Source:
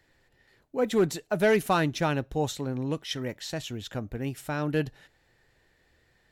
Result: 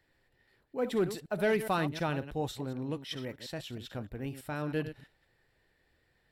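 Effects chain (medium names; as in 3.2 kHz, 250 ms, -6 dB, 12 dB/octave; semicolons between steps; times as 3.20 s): chunks repeated in reverse 105 ms, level -11 dB; peaking EQ 6.5 kHz -10 dB 0.29 oct; trim -6 dB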